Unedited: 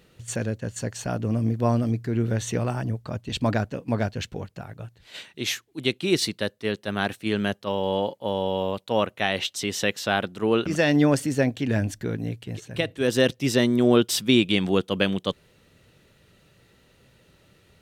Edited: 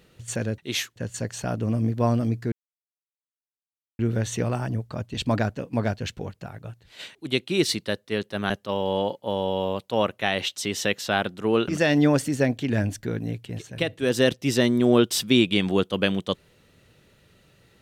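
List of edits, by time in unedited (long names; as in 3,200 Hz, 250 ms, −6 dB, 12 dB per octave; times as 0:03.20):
0:02.14: splice in silence 1.47 s
0:05.30–0:05.68: move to 0:00.58
0:07.03–0:07.48: remove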